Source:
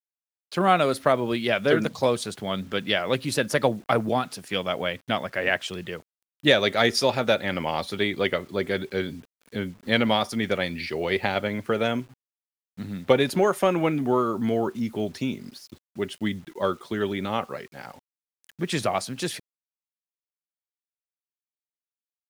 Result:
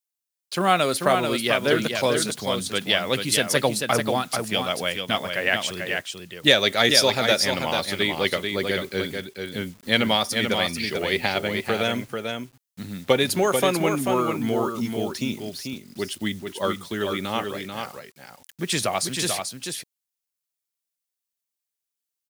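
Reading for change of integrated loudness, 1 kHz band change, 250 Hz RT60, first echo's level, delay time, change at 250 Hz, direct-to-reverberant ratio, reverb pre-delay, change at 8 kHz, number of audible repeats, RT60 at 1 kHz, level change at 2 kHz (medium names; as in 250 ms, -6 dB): +2.0 dB, +1.0 dB, no reverb, -5.5 dB, 439 ms, 0.0 dB, no reverb, no reverb, +10.5 dB, 1, no reverb, +3.0 dB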